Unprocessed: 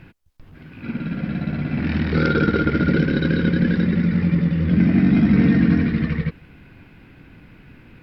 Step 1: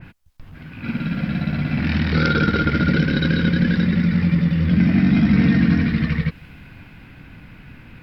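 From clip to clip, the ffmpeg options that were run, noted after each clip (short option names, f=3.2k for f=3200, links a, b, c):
-filter_complex "[0:a]equalizer=f=380:t=o:w=0.99:g=-7,asplit=2[a][b];[b]acompressor=threshold=-26dB:ratio=6,volume=-2dB[c];[a][c]amix=inputs=2:normalize=0,adynamicequalizer=threshold=0.01:dfrequency=2800:dqfactor=0.7:tfrequency=2800:tqfactor=0.7:attack=5:release=100:ratio=0.375:range=2.5:mode=boostabove:tftype=highshelf"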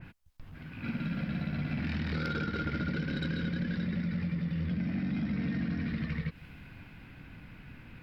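-af "acompressor=threshold=-21dB:ratio=6,asoftclip=type=tanh:threshold=-16dB,volume=-7.5dB"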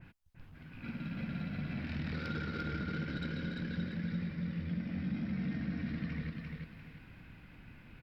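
-af "aecho=1:1:345|690|1035|1380:0.668|0.221|0.0728|0.024,volume=-6.5dB"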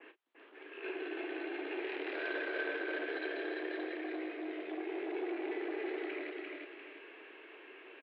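-filter_complex "[0:a]asoftclip=type=tanh:threshold=-34.5dB,asplit=2[a][b];[b]adelay=34,volume=-11dB[c];[a][c]amix=inputs=2:normalize=0,highpass=f=230:t=q:w=0.5412,highpass=f=230:t=q:w=1.307,lowpass=f=3.3k:t=q:w=0.5176,lowpass=f=3.3k:t=q:w=0.7071,lowpass=f=3.3k:t=q:w=1.932,afreqshift=140,volume=6dB"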